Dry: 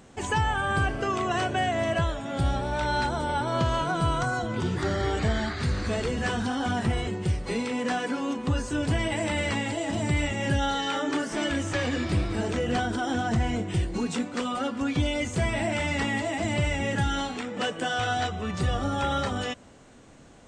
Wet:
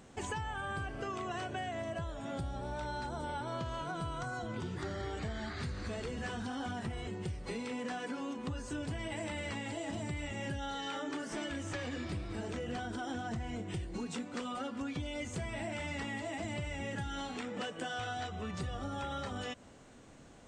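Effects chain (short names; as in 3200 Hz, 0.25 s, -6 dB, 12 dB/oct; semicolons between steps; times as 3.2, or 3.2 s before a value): 1.81–3.24 dynamic EQ 2400 Hz, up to -5 dB, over -41 dBFS, Q 0.85; compressor 5:1, threshold -32 dBFS, peak gain reduction 11 dB; gain -4.5 dB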